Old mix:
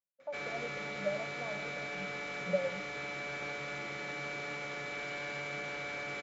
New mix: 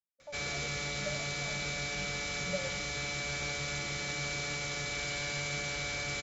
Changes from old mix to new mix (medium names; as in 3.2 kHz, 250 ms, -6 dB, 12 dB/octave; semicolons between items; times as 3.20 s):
speech -6.5 dB; master: remove three-band isolator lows -20 dB, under 180 Hz, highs -17 dB, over 2.7 kHz